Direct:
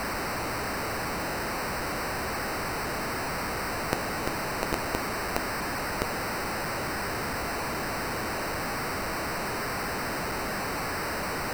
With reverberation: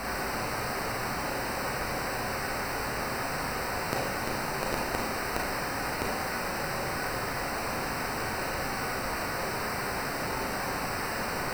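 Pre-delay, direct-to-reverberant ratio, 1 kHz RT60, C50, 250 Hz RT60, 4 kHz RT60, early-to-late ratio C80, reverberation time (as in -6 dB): 23 ms, -1.5 dB, 0.55 s, 3.0 dB, 0.55 s, 0.50 s, 8.0 dB, 0.55 s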